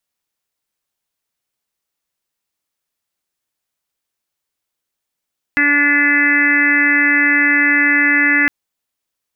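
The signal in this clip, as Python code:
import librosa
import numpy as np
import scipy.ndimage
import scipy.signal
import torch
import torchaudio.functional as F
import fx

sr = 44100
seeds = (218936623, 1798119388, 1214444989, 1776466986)

y = fx.additive_steady(sr, length_s=2.91, hz=289.0, level_db=-19, upper_db=(-16.5, -15.5, -11.5, -3.5, 5, 5.0, -11.5, -6.5))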